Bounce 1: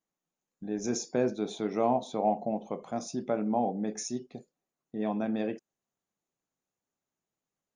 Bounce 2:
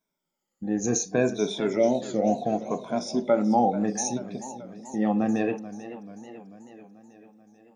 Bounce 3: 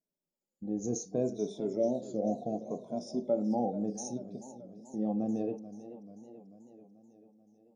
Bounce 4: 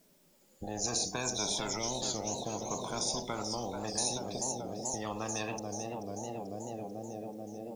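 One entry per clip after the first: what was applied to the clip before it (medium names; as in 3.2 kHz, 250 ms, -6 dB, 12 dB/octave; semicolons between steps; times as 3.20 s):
drifting ripple filter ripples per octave 1.6, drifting -0.68 Hz, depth 15 dB; time-frequency box 1.77–2.42 s, 720–1600 Hz -16 dB; modulated delay 437 ms, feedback 61%, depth 114 cents, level -14.5 dB; trim +4 dB
FFT filter 610 Hz 0 dB, 1.8 kHz -27 dB, 5.1 kHz -5 dB; trim -7.5 dB
spectrum-flattening compressor 10:1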